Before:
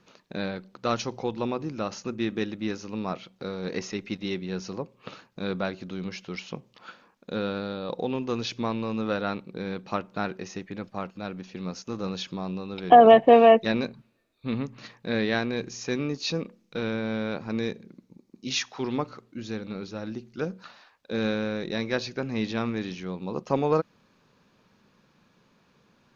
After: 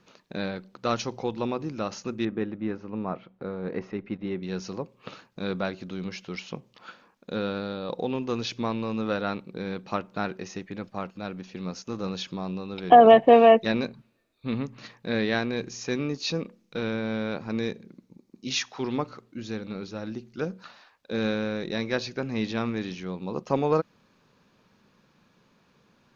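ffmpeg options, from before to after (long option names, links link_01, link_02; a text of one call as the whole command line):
ffmpeg -i in.wav -filter_complex "[0:a]asettb=1/sr,asplit=3[link_01][link_02][link_03];[link_01]atrim=end=2.254[link_04];[link_02]atrim=start=2.25:end=4.43,asetpts=PTS-STARTPTS,afade=type=in:duration=0.004:curve=qsin,afade=type=out:start_time=2.176:duration=0.004:curve=qsin,lowpass=1600[link_05];[link_03]atrim=start=4.426[link_06];[link_04][link_05]acrossfade=duration=0.004:curve1=hsin:curve2=qsin[link_07];[link_07][link_06]acrossfade=duration=0.004:curve1=qsin:curve2=hsin" out.wav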